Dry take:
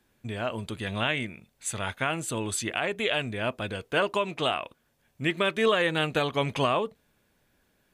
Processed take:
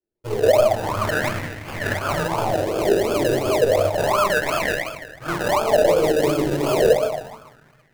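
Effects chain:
each half-wave held at its own peak
noise gate −52 dBFS, range −34 dB
reversed playback
downward compressor 6 to 1, threshold −32 dBFS, peak gain reduction 15 dB
reversed playback
thirty-one-band graphic EQ 200 Hz −9 dB, 630 Hz +11 dB, 10,000 Hz −12 dB
on a send: delay with a high-pass on its return 142 ms, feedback 76%, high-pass 2,300 Hz, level −17 dB
on the sum: rectangular room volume 580 cubic metres, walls mixed, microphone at 4.3 metres
sample-and-hold swept by an LFO 32×, swing 60% 2.8 Hz
hard clipping −15.5 dBFS, distortion −16 dB
auto-filter bell 0.31 Hz 340–2,000 Hz +14 dB
level −3.5 dB

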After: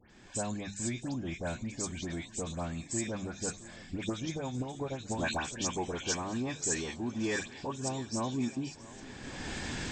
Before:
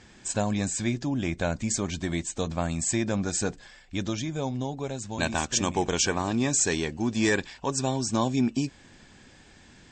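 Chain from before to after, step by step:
camcorder AGC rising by 29 dB per second
feedback echo with a long and a short gap by turns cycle 1,112 ms, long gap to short 1.5 to 1, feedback 58%, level −19 dB
0:03.97–0:05.38: transient designer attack +10 dB, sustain −5 dB
mains-hum notches 50/100/150/200 Hz
all-pass dispersion highs, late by 106 ms, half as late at 2,300 Hz
level −8.5 dB

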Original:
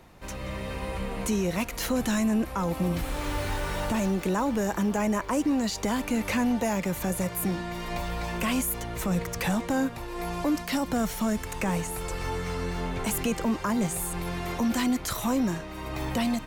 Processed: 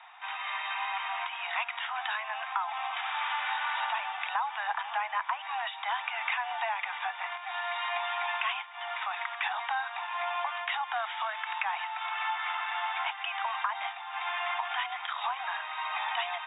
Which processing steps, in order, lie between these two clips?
Butterworth high-pass 720 Hz 96 dB per octave
downward compressor, threshold −35 dBFS, peak gain reduction 9 dB
linear-phase brick-wall low-pass 3,800 Hz
level +7.5 dB

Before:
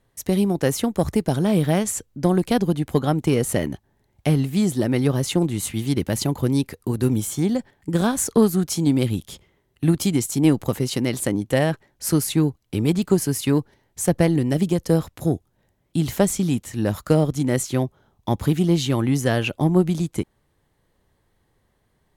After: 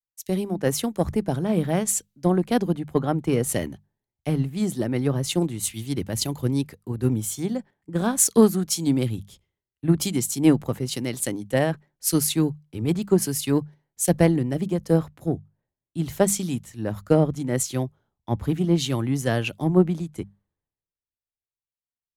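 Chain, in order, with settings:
mains-hum notches 50/100/150/200 Hz
multiband upward and downward expander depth 100%
level −3 dB

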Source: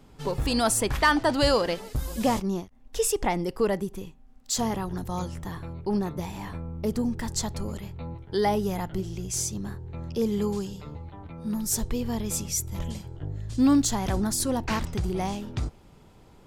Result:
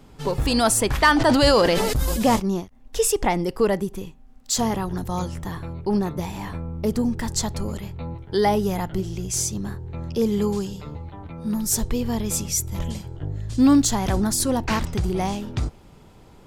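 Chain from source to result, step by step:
0:01.13–0:02.36: level that may fall only so fast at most 23 dB per second
level +4.5 dB

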